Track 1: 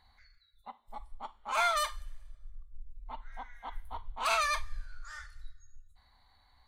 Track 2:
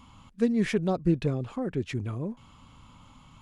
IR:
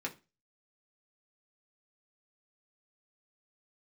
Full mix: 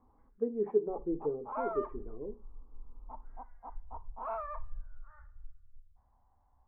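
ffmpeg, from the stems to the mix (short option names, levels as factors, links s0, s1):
-filter_complex "[0:a]volume=0.75[s0];[1:a]highpass=230,equalizer=f=420:t=o:w=0.43:g=14.5,volume=0.15,asplit=2[s1][s2];[s2]volume=0.596[s3];[2:a]atrim=start_sample=2205[s4];[s3][s4]afir=irnorm=-1:irlink=0[s5];[s0][s1][s5]amix=inputs=3:normalize=0,lowpass=f=1000:w=0.5412,lowpass=f=1000:w=1.3066"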